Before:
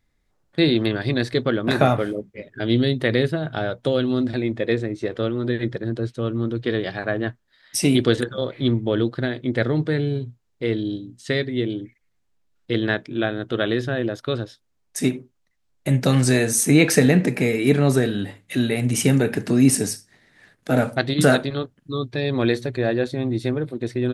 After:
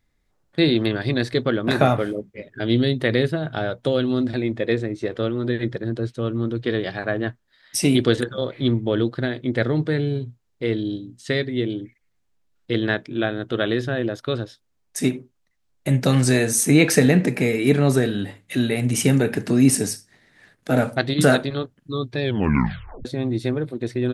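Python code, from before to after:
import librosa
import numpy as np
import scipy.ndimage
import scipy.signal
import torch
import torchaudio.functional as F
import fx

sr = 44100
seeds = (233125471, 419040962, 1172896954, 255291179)

y = fx.edit(x, sr, fx.tape_stop(start_s=22.22, length_s=0.83), tone=tone)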